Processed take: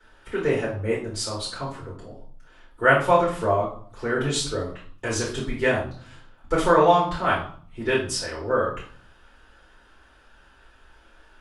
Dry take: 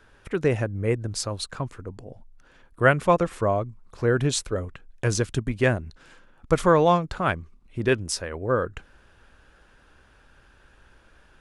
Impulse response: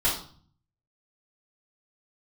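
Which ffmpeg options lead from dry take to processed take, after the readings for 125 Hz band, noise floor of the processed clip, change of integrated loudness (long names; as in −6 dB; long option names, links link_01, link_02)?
−5.0 dB, −55 dBFS, +1.0 dB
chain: -filter_complex "[0:a]lowshelf=frequency=200:gain=-12[link_01];[1:a]atrim=start_sample=2205,asetrate=42336,aresample=44100[link_02];[link_01][link_02]afir=irnorm=-1:irlink=0,volume=-9dB"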